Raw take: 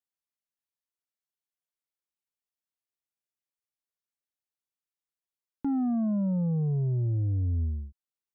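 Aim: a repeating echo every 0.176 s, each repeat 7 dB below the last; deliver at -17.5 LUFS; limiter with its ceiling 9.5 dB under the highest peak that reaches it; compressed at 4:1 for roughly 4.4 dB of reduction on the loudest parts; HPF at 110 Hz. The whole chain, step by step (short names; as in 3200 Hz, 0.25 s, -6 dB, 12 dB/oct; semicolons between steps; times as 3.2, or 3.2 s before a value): HPF 110 Hz; compressor 4:1, threshold -30 dBFS; limiter -32 dBFS; feedback echo 0.176 s, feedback 45%, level -7 dB; gain +20 dB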